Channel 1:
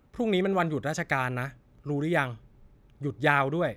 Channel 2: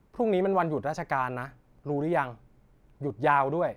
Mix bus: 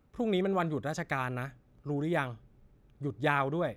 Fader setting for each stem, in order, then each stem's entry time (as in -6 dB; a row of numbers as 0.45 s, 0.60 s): -6.0 dB, -12.0 dB; 0.00 s, 0.00 s